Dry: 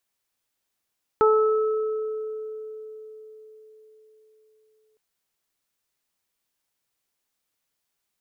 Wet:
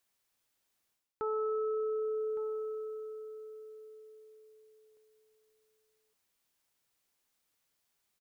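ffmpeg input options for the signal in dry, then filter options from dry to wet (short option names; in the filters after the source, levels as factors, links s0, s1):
-f lavfi -i "aevalsrc='0.178*pow(10,-3*t/4.61)*sin(2*PI*434*t)+0.0794*pow(10,-3*t/0.6)*sin(2*PI*868*t)+0.106*pow(10,-3*t/2.05)*sin(2*PI*1302*t)':d=3.76:s=44100"
-af "areverse,acompressor=threshold=0.0224:ratio=8,areverse,aecho=1:1:1162:0.188"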